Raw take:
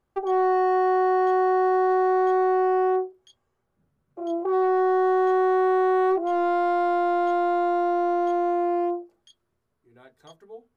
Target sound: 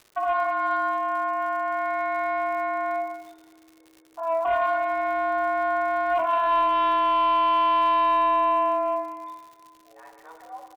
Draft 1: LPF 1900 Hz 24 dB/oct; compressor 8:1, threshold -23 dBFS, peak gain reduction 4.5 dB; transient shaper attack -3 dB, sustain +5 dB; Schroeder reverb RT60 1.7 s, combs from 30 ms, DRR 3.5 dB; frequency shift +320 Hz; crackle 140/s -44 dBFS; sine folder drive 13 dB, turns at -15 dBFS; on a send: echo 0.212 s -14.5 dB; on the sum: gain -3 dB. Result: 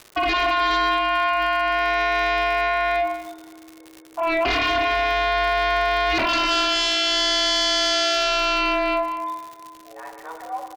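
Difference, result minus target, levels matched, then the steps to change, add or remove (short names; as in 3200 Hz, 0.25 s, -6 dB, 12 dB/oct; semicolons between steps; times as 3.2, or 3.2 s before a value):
sine folder: distortion +24 dB
change: sine folder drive 3 dB, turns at -15 dBFS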